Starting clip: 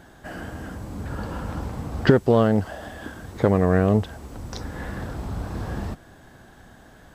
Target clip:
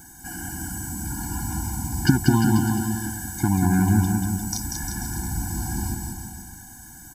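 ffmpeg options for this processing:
ffmpeg -i in.wav -af "aecho=1:1:190|351.5|488.8|605.5|704.6:0.631|0.398|0.251|0.158|0.1,aexciter=amount=11.4:drive=4.9:freq=5400,afftfilt=real='re*eq(mod(floor(b*sr/1024/350),2),0)':imag='im*eq(mod(floor(b*sr/1024/350),2),0)':win_size=1024:overlap=0.75" out.wav

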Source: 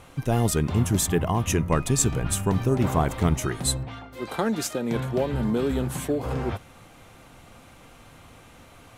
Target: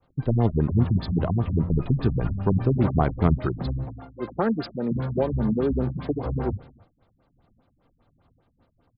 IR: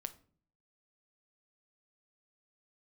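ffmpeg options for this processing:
-filter_complex "[0:a]acrossover=split=370|650|3100[link_01][link_02][link_03][link_04];[link_03]adynamicsmooth=sensitivity=3:basefreq=1700[link_05];[link_01][link_02][link_05][link_04]amix=inputs=4:normalize=0,agate=range=-33dB:threshold=-39dB:ratio=3:detection=peak,asplit=2[link_06][link_07];[link_07]adelay=274.1,volume=-26dB,highshelf=frequency=4000:gain=-6.17[link_08];[link_06][link_08]amix=inputs=2:normalize=0,afftfilt=real='re*lt(b*sr/1024,210*pow(5300/210,0.5+0.5*sin(2*PI*5*pts/sr)))':imag='im*lt(b*sr/1024,210*pow(5300/210,0.5+0.5*sin(2*PI*5*pts/sr)))':win_size=1024:overlap=0.75,volume=2dB"

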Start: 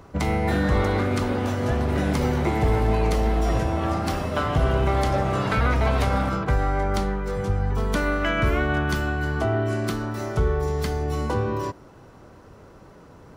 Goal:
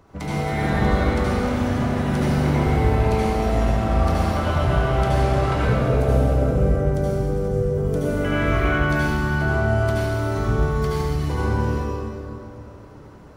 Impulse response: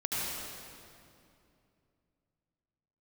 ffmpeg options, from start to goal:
-filter_complex "[0:a]asettb=1/sr,asplit=3[link_01][link_02][link_03];[link_01]atrim=end=5.544[link_04];[link_02]atrim=start=5.54:end=8.17,asetpts=PTS-STARTPTS,afade=type=in:duration=0.004:curve=qsin,afade=type=out:start_time=2.626:duration=0.004:curve=qsin,equalizer=frequency=125:width_type=o:width=1:gain=3,equalizer=frequency=500:width_type=o:width=1:gain=10,equalizer=frequency=1000:width_type=o:width=1:gain=-12,equalizer=frequency=2000:width_type=o:width=1:gain=-8,equalizer=frequency=4000:width_type=o:width=1:gain=-9[link_05];[link_03]atrim=start=8.166[link_06];[link_04][link_05]acrossfade=duration=0.004:curve1=hsin:curve2=qsin[link_07];[link_07][link_06]acrossfade=duration=0.004:curve1=qsin:curve2=hsin[link_08];[1:a]atrim=start_sample=2205[link_09];[link_08][link_09]afir=irnorm=-1:irlink=0,volume=-5.5dB"

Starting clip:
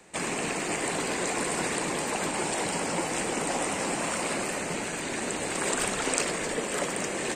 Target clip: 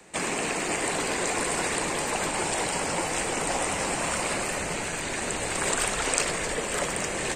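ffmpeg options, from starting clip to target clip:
ffmpeg -i in.wav -filter_complex "[0:a]asubboost=boost=5:cutoff=110,acrossover=split=310|890[link_01][link_02][link_03];[link_01]alimiter=level_in=10dB:limit=-24dB:level=0:latency=1:release=309,volume=-10dB[link_04];[link_04][link_02][link_03]amix=inputs=3:normalize=0,volume=2.5dB" out.wav

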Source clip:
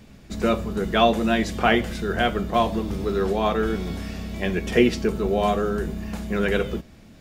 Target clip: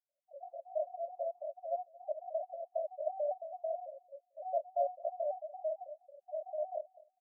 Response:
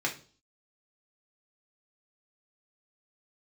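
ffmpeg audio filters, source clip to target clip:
-filter_complex "[0:a]aemphasis=mode=reproduction:type=bsi,asplit=4[link_01][link_02][link_03][link_04];[link_02]asetrate=22050,aresample=44100,atempo=2,volume=-16dB[link_05];[link_03]asetrate=35002,aresample=44100,atempo=1.25992,volume=-4dB[link_06];[link_04]asetrate=88200,aresample=44100,atempo=0.5,volume=-15dB[link_07];[link_01][link_05][link_06][link_07]amix=inputs=4:normalize=0,areverse,acompressor=threshold=-19dB:ratio=20,areverse,alimiter=limit=-21.5dB:level=0:latency=1:release=68,asetrate=85689,aresample=44100,atempo=0.514651,afftfilt=real='re*gte(hypot(re,im),0.0398)':imag='im*gte(hypot(re,im),0.0398)':win_size=1024:overlap=0.75,asuperpass=centerf=640:order=20:qfactor=3.2,aecho=1:1:225|450:0.0841|0.0177,afftfilt=real='re*gt(sin(2*PI*4.5*pts/sr)*(1-2*mod(floor(b*sr/1024/360),2)),0)':imag='im*gt(sin(2*PI*4.5*pts/sr)*(1-2*mod(floor(b*sr/1024/360),2)),0)':win_size=1024:overlap=0.75,volume=6.5dB"

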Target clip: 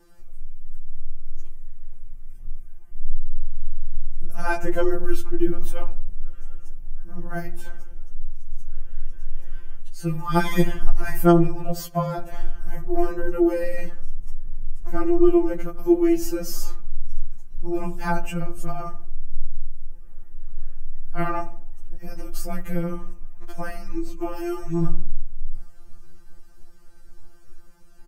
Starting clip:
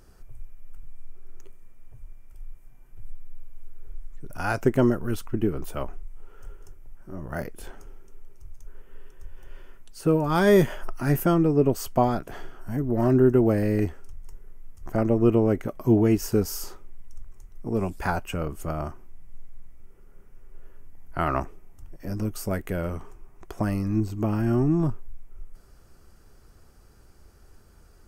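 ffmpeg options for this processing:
ffmpeg -i in.wav -filter_complex "[0:a]asettb=1/sr,asplit=3[link_01][link_02][link_03];[link_01]atrim=end=24.364[link_04];[link_02]atrim=start=24.36:end=24.82,asetpts=PTS-STARTPTS,afade=type=in:duration=0.004:curve=qsin,afade=type=out:start_time=0.456:duration=0.004:curve=qsin,tiltshelf=frequency=1500:gain=-7.5[link_05];[link_03]atrim=start=24.816[link_06];[link_04][link_05]acrossfade=duration=0.004:curve1=hsin:curve2=qsin[link_07];[link_07][link_06]acrossfade=duration=0.004:curve1=qsin:curve2=hsin,aecho=1:1:3.3:0.33,asubboost=boost=3.5:cutoff=110,asplit=3[link_08][link_09][link_10];[link_08]afade=type=out:start_time=11.7:duration=0.02[link_11];[link_09]afreqshift=35,afade=type=in:start_time=11.7:duration=0.02,afade=type=out:start_time=12.19:duration=0.02[link_12];[link_10]afade=type=in:start_time=12.19:duration=0.02[link_13];[link_11][link_12][link_13]amix=inputs=3:normalize=0,asplit=2[link_14][link_15];[link_15]adelay=78,lowpass=frequency=990:poles=1,volume=-13dB,asplit=2[link_16][link_17];[link_17]adelay=78,lowpass=frequency=990:poles=1,volume=0.48,asplit=2[link_18][link_19];[link_19]adelay=78,lowpass=frequency=990:poles=1,volume=0.48,asplit=2[link_20][link_21];[link_21]adelay=78,lowpass=frequency=990:poles=1,volume=0.48,asplit=2[link_22][link_23];[link_23]adelay=78,lowpass=frequency=990:poles=1,volume=0.48[link_24];[link_14][link_16][link_18][link_20][link_22][link_24]amix=inputs=6:normalize=0,afftfilt=real='re*2.83*eq(mod(b,8),0)':imag='im*2.83*eq(mod(b,8),0)':win_size=2048:overlap=0.75,volume=2dB" out.wav

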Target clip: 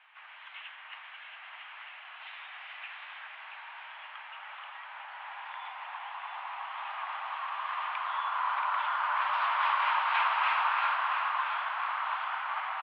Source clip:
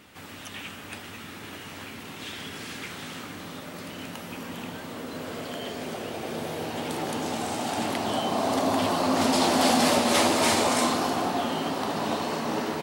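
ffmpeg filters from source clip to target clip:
ffmpeg -i in.wav -af "highpass=frequency=520:width_type=q:width=0.5412,highpass=frequency=520:width_type=q:width=1.307,lowpass=frequency=2600:width_type=q:width=0.5176,lowpass=frequency=2600:width_type=q:width=0.7071,lowpass=frequency=2600:width_type=q:width=1.932,afreqshift=340,aecho=1:1:679|1358|2037|2716|3395:0.473|0.218|0.1|0.0461|0.0212,volume=-3.5dB" out.wav

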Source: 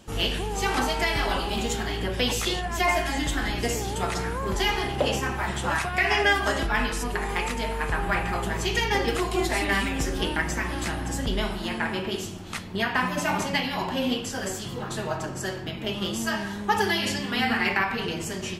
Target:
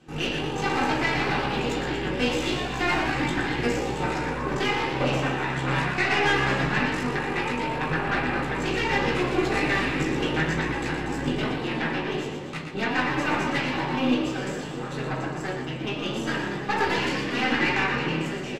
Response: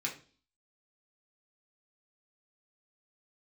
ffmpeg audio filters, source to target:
-filter_complex "[0:a]aeval=exprs='0.398*(cos(1*acos(clip(val(0)/0.398,-1,1)))-cos(1*PI/2))+0.0708*(cos(8*acos(clip(val(0)/0.398,-1,1)))-cos(8*PI/2))':channel_layout=same,aemphasis=mode=reproduction:type=75fm,asplit=9[link_01][link_02][link_03][link_04][link_05][link_06][link_07][link_08][link_09];[link_02]adelay=119,afreqshift=66,volume=-7dB[link_10];[link_03]adelay=238,afreqshift=132,volume=-11.3dB[link_11];[link_04]adelay=357,afreqshift=198,volume=-15.6dB[link_12];[link_05]adelay=476,afreqshift=264,volume=-19.9dB[link_13];[link_06]adelay=595,afreqshift=330,volume=-24.2dB[link_14];[link_07]adelay=714,afreqshift=396,volume=-28.5dB[link_15];[link_08]adelay=833,afreqshift=462,volume=-32.8dB[link_16];[link_09]adelay=952,afreqshift=528,volume=-37.1dB[link_17];[link_01][link_10][link_11][link_12][link_13][link_14][link_15][link_16][link_17]amix=inputs=9:normalize=0[link_18];[1:a]atrim=start_sample=2205,atrim=end_sample=6615,asetrate=48510,aresample=44100[link_19];[link_18][link_19]afir=irnorm=-1:irlink=0,volume=-2.5dB"

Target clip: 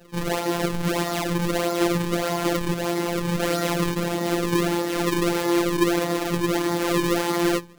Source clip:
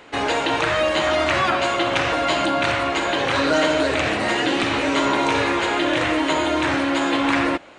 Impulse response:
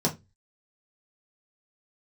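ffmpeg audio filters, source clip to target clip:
-filter_complex "[1:a]atrim=start_sample=2205,atrim=end_sample=6174,asetrate=48510,aresample=44100[link_01];[0:a][link_01]afir=irnorm=-1:irlink=0,acrusher=samples=37:mix=1:aa=0.000001:lfo=1:lforange=59.2:lforate=1.6,afftfilt=real='hypot(re,im)*cos(PI*b)':imag='0':win_size=1024:overlap=0.75,volume=-13.5dB"

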